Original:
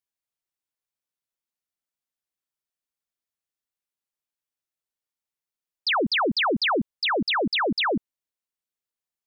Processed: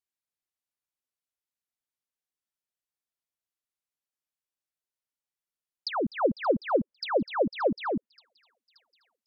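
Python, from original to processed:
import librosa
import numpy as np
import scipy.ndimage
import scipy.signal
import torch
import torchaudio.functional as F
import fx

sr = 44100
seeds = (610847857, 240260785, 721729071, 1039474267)

y = fx.env_lowpass_down(x, sr, base_hz=1100.0, full_db=-21.0)
y = fx.peak_eq(y, sr, hz=540.0, db=10.5, octaves=0.38, at=(6.08, 7.73))
y = fx.echo_wet_highpass(y, sr, ms=578, feedback_pct=71, hz=4500.0, wet_db=-17.5)
y = y * librosa.db_to_amplitude(-4.0)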